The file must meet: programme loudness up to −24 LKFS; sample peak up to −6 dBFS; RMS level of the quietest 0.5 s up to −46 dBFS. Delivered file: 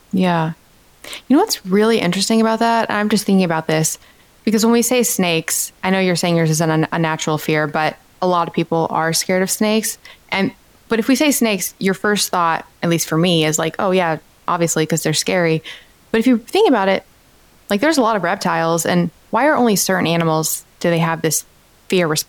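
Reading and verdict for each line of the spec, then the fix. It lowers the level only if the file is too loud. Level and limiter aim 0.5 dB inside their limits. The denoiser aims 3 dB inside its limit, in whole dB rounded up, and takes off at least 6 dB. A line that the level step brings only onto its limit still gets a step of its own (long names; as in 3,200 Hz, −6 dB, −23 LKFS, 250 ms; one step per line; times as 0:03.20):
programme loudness −17.0 LKFS: out of spec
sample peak −4.5 dBFS: out of spec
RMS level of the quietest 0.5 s −50 dBFS: in spec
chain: level −7.5 dB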